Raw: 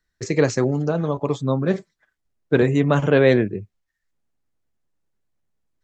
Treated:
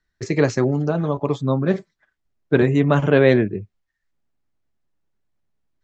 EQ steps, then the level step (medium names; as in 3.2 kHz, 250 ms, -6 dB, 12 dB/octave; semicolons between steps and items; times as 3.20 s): distance through air 75 m; band-stop 490 Hz, Q 12; +1.5 dB